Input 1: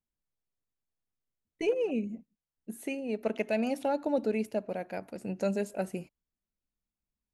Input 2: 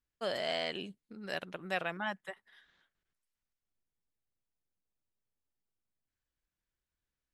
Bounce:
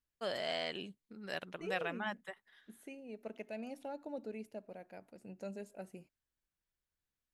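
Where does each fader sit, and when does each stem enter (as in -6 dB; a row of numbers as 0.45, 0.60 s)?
-14.5, -3.0 dB; 0.00, 0.00 s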